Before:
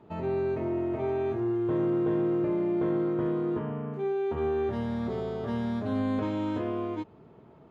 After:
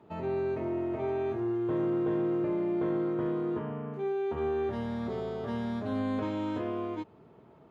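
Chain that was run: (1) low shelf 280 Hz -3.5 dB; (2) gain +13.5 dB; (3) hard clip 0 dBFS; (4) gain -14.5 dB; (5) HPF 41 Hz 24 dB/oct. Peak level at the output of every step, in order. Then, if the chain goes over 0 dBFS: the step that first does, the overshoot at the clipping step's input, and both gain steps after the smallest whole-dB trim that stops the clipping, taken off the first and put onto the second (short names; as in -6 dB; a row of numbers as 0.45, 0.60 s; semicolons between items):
-19.0, -5.5, -5.5, -20.0, -20.0 dBFS; no overload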